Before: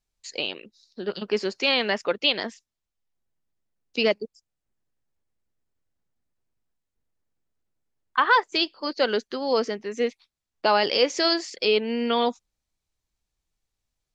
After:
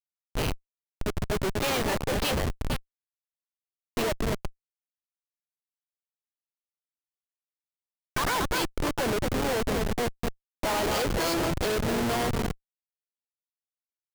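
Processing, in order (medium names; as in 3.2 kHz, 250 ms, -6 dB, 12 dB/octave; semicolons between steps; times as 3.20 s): echo whose repeats swap between lows and highs 227 ms, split 2.2 kHz, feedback 68%, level -7.5 dB; harmony voices -4 st -18 dB, +7 st -6 dB; Schmitt trigger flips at -24 dBFS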